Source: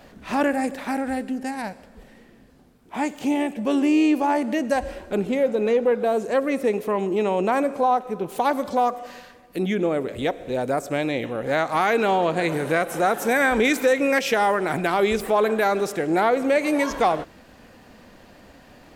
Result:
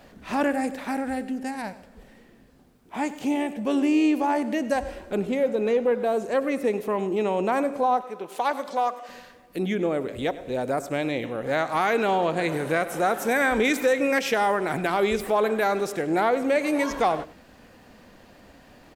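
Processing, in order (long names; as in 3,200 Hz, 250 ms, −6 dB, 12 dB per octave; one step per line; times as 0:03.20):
0:08.04–0:09.09: meter weighting curve A
slap from a distant wall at 17 metres, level −17 dB
bit reduction 12 bits
level −2.5 dB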